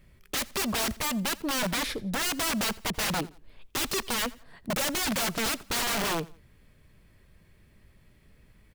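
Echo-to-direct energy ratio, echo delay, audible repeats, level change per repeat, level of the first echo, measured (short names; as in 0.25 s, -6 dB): -21.5 dB, 86 ms, 2, -9.0 dB, -22.0 dB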